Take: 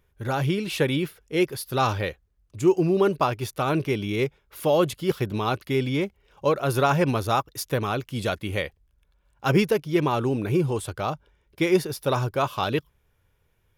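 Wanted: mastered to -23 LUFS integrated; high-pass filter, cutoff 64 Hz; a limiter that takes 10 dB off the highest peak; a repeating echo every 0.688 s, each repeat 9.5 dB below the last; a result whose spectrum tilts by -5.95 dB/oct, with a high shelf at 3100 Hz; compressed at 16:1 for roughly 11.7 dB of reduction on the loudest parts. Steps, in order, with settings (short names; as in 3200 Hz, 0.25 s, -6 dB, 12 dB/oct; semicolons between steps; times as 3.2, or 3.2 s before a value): HPF 64 Hz; high shelf 3100 Hz -8 dB; compressor 16:1, threshold -26 dBFS; limiter -25.5 dBFS; feedback echo 0.688 s, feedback 33%, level -9.5 dB; gain +12.5 dB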